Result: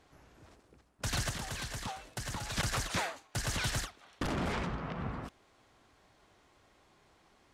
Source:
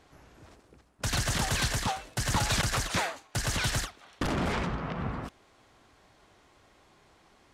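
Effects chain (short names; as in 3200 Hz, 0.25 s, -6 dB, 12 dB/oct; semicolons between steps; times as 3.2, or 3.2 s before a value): 1.29–2.57 compressor 6:1, threshold -32 dBFS, peak gain reduction 9 dB; gain -4.5 dB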